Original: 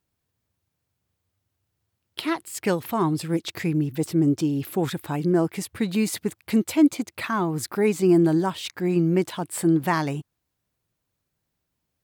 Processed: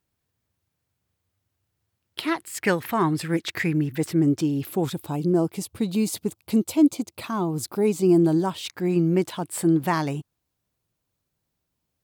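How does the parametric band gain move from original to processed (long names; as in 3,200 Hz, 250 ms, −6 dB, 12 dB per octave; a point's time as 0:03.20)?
parametric band 1,800 Hz 0.88 octaves
0:02.25 +1 dB
0:02.68 +9 dB
0:03.94 +9 dB
0:04.70 −2.5 dB
0:04.97 −13 dB
0:07.83 −13 dB
0:08.73 −2.5 dB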